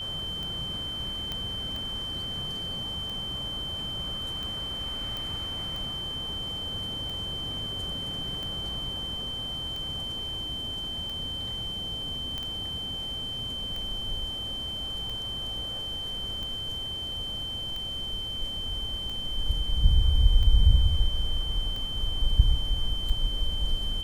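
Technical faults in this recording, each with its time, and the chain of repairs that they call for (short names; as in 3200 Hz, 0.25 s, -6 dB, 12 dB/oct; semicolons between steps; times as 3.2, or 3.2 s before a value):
tick 45 rpm
tone 3100 Hz -32 dBFS
1.32 pop -18 dBFS
5.17 pop
12.38 pop -20 dBFS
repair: de-click; notch 3100 Hz, Q 30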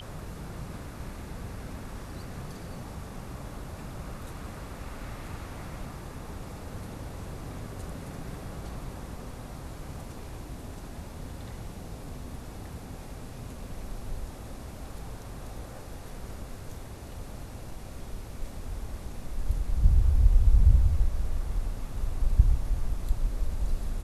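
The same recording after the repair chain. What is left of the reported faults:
5.17 pop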